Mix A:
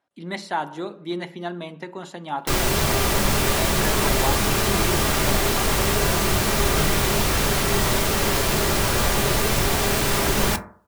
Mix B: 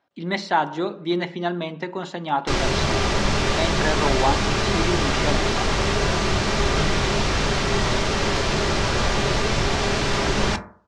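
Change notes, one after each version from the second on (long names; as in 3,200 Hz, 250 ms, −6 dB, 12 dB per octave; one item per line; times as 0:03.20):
speech +5.5 dB
master: add low-pass filter 6,200 Hz 24 dB per octave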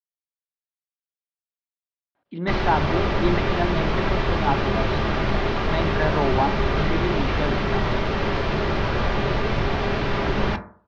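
speech: entry +2.15 s
master: add high-frequency loss of the air 290 metres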